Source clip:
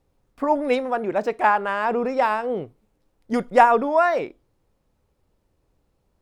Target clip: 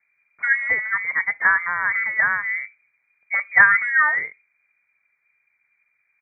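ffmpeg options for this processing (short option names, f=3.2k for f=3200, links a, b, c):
-af "lowpass=f=2.4k:t=q:w=0.5098,lowpass=f=2.4k:t=q:w=0.6013,lowpass=f=2.4k:t=q:w=0.9,lowpass=f=2.4k:t=q:w=2.563,afreqshift=-2800,equalizer=f=160:t=o:w=0.67:g=9,equalizer=f=400:t=o:w=0.67:g=-5,equalizer=f=1.6k:t=o:w=0.67:g=3,asetrate=38170,aresample=44100,atempo=1.15535,volume=-1dB"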